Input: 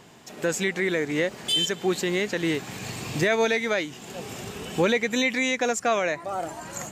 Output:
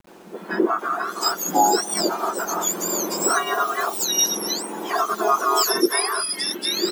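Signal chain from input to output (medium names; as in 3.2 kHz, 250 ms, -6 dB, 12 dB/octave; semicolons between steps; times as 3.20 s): spectrum inverted on a logarithmic axis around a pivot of 1.6 kHz; three bands offset in time lows, mids, highs 70/790 ms, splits 210/2700 Hz; bit crusher 10-bit; trim +7.5 dB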